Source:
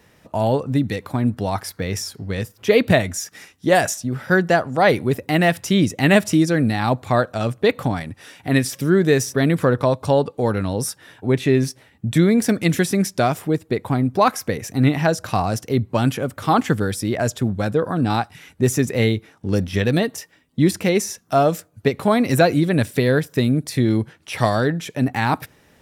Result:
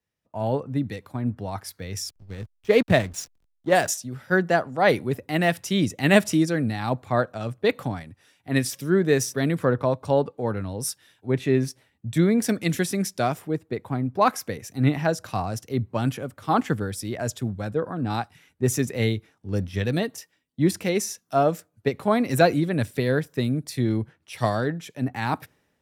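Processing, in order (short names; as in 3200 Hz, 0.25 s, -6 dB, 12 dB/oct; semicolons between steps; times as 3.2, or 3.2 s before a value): 2.09–3.89 backlash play -25.5 dBFS; three-band expander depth 70%; gain -5.5 dB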